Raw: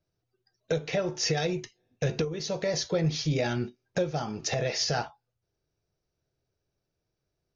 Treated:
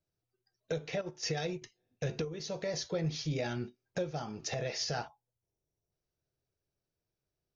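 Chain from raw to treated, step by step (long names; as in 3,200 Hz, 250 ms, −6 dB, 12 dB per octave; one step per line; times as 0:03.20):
0:01.01–0:01.62: noise gate −29 dBFS, range −9 dB
0:05.08–0:05.91: gain on a spectral selection 1,100–5,300 Hz −11 dB
level −7 dB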